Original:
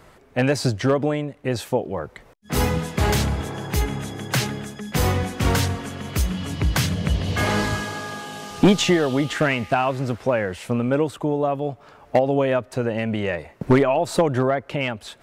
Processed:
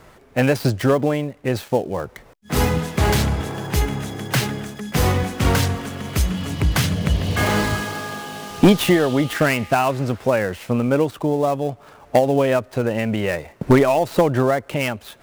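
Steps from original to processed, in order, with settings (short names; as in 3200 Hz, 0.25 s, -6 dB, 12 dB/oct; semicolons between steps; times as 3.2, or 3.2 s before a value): switching dead time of 0.078 ms; gain +2.5 dB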